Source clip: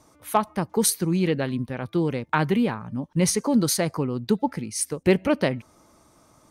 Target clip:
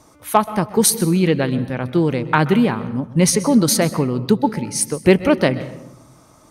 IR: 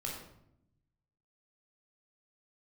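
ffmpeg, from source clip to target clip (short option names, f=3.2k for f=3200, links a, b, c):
-filter_complex "[0:a]asplit=2[a][b];[1:a]atrim=start_sample=2205,adelay=128[c];[b][c]afir=irnorm=-1:irlink=0,volume=-15.5dB[d];[a][d]amix=inputs=2:normalize=0,volume=6.5dB"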